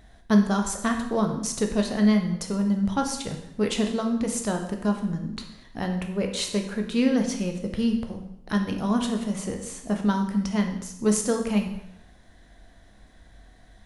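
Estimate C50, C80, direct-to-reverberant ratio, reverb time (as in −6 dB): 7.5 dB, 10.0 dB, 3.5 dB, 0.80 s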